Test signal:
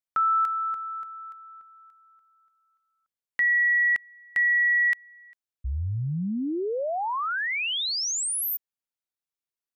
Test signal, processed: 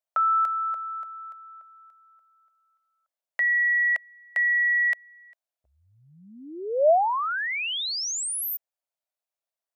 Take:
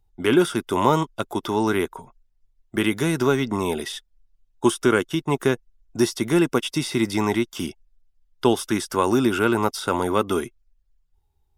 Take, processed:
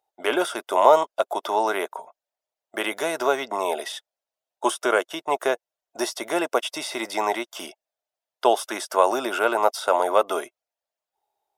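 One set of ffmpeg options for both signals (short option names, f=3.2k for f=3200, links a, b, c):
-af "highpass=f=630:t=q:w=4.9,volume=-1.5dB"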